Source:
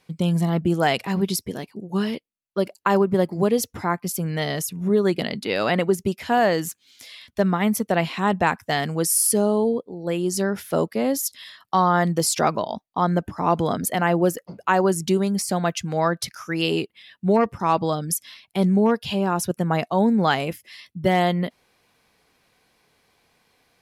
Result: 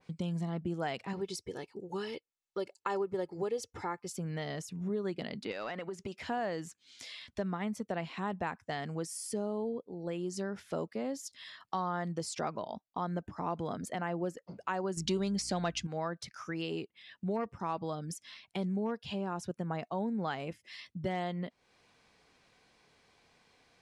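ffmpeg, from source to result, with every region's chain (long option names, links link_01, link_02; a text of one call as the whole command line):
ffmpeg -i in.wav -filter_complex "[0:a]asettb=1/sr,asplit=3[link_01][link_02][link_03];[link_01]atrim=end=1.134[link_04];[link_02]atrim=start=1.13:end=4.16,asetpts=PTS-STARTPTS,afade=type=in:duration=0.004:curve=qsin,afade=type=out:start_time=3.026:duration=0.004:curve=qsin,bass=frequency=250:gain=-4,treble=frequency=4000:gain=3,aecho=1:1:2.3:0.56,atrim=end_sample=133623[link_05];[link_03]atrim=start=4.156[link_06];[link_04][link_05]acrossfade=duration=0.004:curve1=hsin:curve2=qsin[link_07];[link_07][link_06]acrossfade=duration=0.004:curve1=qsin:curve2=hsin,asettb=1/sr,asplit=3[link_08][link_09][link_10];[link_08]atrim=end=5.514[link_11];[link_09]atrim=start=5.51:end=6.18,asetpts=PTS-STARTPTS,afade=type=in:duration=0.004:curve=qsin,afade=type=out:start_time=0.666:duration=0.004:curve=qsin,acompressor=threshold=-28dB:ratio=6:attack=3.2:release=140:knee=1:detection=peak,asplit=2[link_12][link_13];[link_13]highpass=frequency=720:poles=1,volume=14dB,asoftclip=type=tanh:threshold=-13dB[link_14];[link_12][link_14]amix=inputs=2:normalize=0,lowpass=frequency=5700:poles=1,volume=-6dB[link_15];[link_10]atrim=start=6.176[link_16];[link_11][link_15]acrossfade=duration=0.004:curve1=hsin:curve2=qsin[link_17];[link_17][link_16]acrossfade=duration=0.004:curve1=qsin:curve2=hsin,asettb=1/sr,asplit=3[link_18][link_19][link_20];[link_18]atrim=end=14.974[link_21];[link_19]atrim=start=14.97:end=15.87,asetpts=PTS-STARTPTS,afade=type=in:duration=0.004:curve=qsin,afade=type=out:start_time=0.896:duration=0.004:curve=qsin,equalizer=frequency=4000:width=0.73:gain=8,acontrast=88,aeval=exprs='val(0)+0.01*(sin(2*PI*60*n/s)+sin(2*PI*2*60*n/s)/2+sin(2*PI*3*60*n/s)/3+sin(2*PI*4*60*n/s)/4+sin(2*PI*5*60*n/s)/5)':channel_layout=same[link_22];[link_20]atrim=start=15.866[link_23];[link_21][link_22]acrossfade=duration=0.004:curve1=hsin:curve2=qsin[link_24];[link_24][link_23]acrossfade=duration=0.004:curve1=qsin:curve2=hsin,lowpass=frequency=8500:width=0.5412,lowpass=frequency=8500:width=1.3066,acompressor=threshold=-40dB:ratio=2,adynamicequalizer=threshold=0.00251:dfrequency=2300:dqfactor=0.7:tfrequency=2300:tqfactor=0.7:attack=5:release=100:ratio=0.375:range=2:mode=cutabove:tftype=highshelf,volume=-2.5dB" out.wav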